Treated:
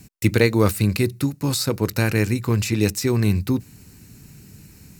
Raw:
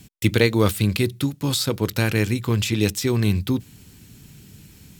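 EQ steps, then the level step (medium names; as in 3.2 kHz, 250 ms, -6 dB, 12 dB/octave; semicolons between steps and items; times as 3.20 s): peaking EQ 3.3 kHz -15 dB 0.25 oct; +1.0 dB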